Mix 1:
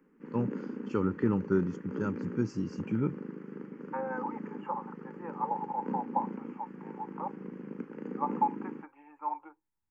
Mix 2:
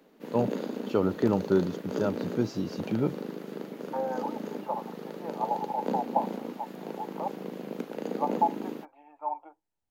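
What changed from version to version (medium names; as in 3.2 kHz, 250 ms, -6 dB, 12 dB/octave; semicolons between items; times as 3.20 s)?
second voice -6.0 dB; background: remove tape spacing loss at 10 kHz 31 dB; master: remove static phaser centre 1.6 kHz, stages 4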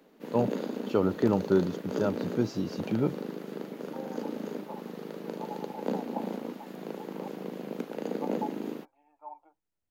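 second voice -12.0 dB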